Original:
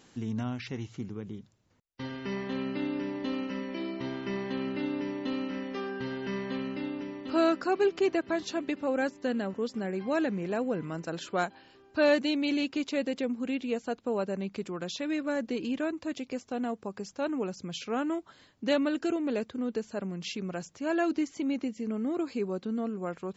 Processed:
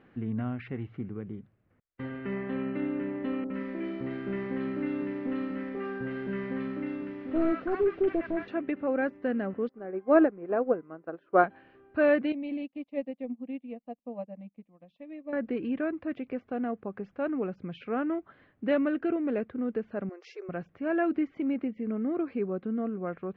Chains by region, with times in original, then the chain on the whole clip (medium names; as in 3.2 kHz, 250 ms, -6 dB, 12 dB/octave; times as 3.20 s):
3.44–8.48 s: one-bit delta coder 32 kbps, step -44 dBFS + treble shelf 4 kHz +10 dB + three bands offset in time lows, mids, highs 60/100 ms, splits 920/3100 Hz
9.69–11.44 s: high-order bell 640 Hz +10 dB 2.6 oct + upward expansion 2.5:1, over -32 dBFS
12.32–15.33 s: static phaser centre 390 Hz, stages 6 + upward expansion 2.5:1, over -46 dBFS
20.09–20.49 s: brick-wall FIR high-pass 340 Hz + resonant high shelf 4.2 kHz +10.5 dB, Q 3
whole clip: low-pass 2.2 kHz 24 dB/octave; peaking EQ 930 Hz -9 dB 0.23 oct; trim +1 dB